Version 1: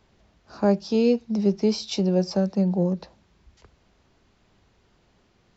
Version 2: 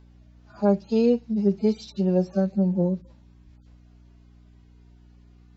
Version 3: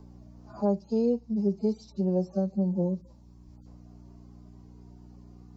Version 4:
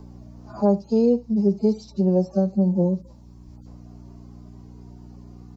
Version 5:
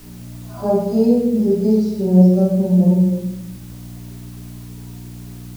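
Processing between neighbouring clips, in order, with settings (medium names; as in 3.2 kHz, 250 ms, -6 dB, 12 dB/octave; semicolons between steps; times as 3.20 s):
harmonic-percussive separation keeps harmonic; hum 60 Hz, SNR 26 dB
high-order bell 2.3 kHz -13 dB; three bands compressed up and down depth 40%; trim -4.5 dB
delay 75 ms -21.5 dB; trim +7 dB
simulated room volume 360 m³, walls mixed, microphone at 2.9 m; added noise white -43 dBFS; trim -4.5 dB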